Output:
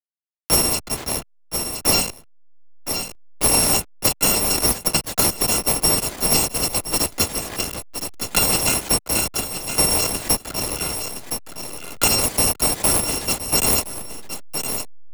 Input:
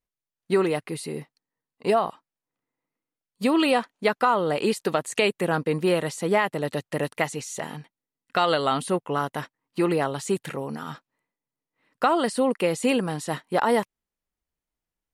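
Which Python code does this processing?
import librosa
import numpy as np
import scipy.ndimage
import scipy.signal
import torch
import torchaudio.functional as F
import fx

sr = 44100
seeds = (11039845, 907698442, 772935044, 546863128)

p1 = fx.bit_reversed(x, sr, seeds[0], block=256)
p2 = fx.dynamic_eq(p1, sr, hz=9200.0, q=0.72, threshold_db=-37.0, ratio=4.0, max_db=7)
p3 = fx.sample_hold(p2, sr, seeds[1], rate_hz=1600.0, jitter_pct=20)
p4 = p2 + (p3 * 10.0 ** (-6.0 / 20.0))
p5 = fx.backlash(p4, sr, play_db=-27.0)
p6 = p5 + fx.echo_single(p5, sr, ms=1016, db=-17.5, dry=0)
y = fx.band_squash(p6, sr, depth_pct=70)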